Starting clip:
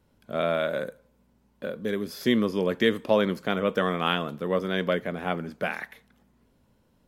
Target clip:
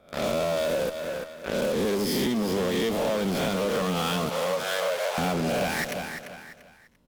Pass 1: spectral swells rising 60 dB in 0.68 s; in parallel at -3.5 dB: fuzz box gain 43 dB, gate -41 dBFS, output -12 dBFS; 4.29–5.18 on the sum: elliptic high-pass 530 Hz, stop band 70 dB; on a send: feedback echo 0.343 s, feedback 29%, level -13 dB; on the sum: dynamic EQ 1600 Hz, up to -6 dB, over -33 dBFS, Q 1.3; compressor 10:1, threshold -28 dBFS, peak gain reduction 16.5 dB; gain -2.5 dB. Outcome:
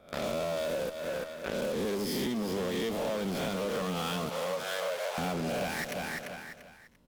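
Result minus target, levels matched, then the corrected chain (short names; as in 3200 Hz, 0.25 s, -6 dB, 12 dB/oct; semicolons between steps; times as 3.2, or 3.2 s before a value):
compressor: peak gain reduction +6.5 dB
spectral swells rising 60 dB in 0.68 s; in parallel at -3.5 dB: fuzz box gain 43 dB, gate -41 dBFS, output -12 dBFS; 4.29–5.18 on the sum: elliptic high-pass 530 Hz, stop band 70 dB; on a send: feedback echo 0.343 s, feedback 29%, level -13 dB; on the sum: dynamic EQ 1600 Hz, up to -6 dB, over -33 dBFS, Q 1.3; compressor 10:1, threshold -21 dBFS, peak gain reduction 10.5 dB; gain -2.5 dB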